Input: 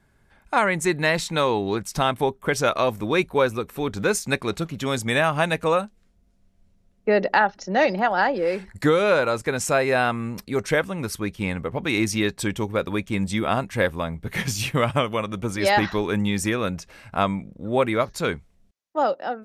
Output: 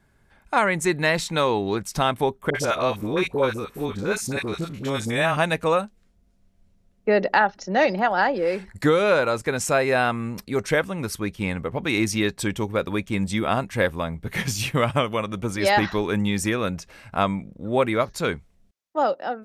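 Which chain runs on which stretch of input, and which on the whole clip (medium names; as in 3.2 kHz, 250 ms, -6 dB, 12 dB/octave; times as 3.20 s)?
2.50–5.37 s: spectrogram pixelated in time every 50 ms + phase dispersion highs, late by 50 ms, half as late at 830 Hz
whole clip: none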